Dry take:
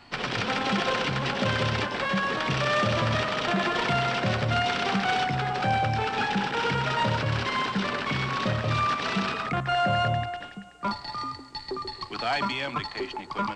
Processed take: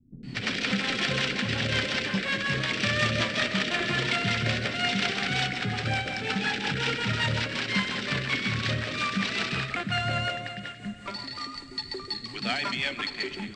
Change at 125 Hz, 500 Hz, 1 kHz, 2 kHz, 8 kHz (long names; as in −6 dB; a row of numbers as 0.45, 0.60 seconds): −2.5, −5.0, −8.0, +1.5, +3.0 decibels